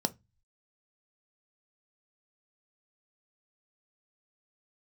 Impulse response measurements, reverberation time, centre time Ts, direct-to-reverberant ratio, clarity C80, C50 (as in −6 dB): 0.20 s, 3 ms, 10.0 dB, 34.5 dB, 23.5 dB